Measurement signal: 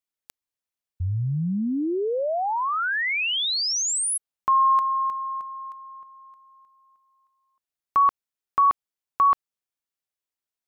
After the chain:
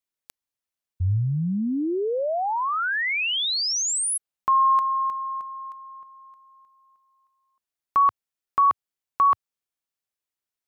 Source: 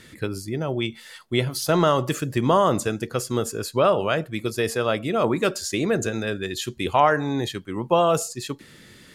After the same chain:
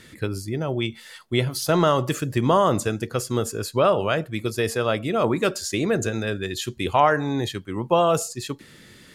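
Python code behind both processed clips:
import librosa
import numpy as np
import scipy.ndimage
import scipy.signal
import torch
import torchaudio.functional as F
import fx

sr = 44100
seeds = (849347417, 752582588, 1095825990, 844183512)

y = fx.dynamic_eq(x, sr, hz=100.0, q=2.8, threshold_db=-47.0, ratio=4.0, max_db=4)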